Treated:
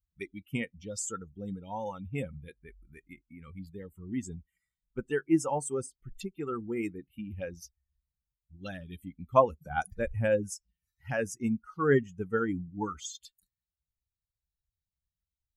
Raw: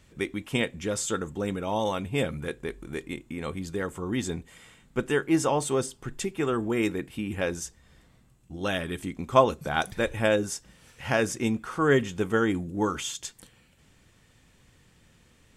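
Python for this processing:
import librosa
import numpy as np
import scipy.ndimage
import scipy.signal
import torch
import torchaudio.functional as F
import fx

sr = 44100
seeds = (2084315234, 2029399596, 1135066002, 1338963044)

y = fx.bin_expand(x, sr, power=2.0)
y = fx.low_shelf(y, sr, hz=260.0, db=6.0, at=(9.7, 10.55))
y = fx.env_phaser(y, sr, low_hz=390.0, high_hz=3900.0, full_db=-32.0)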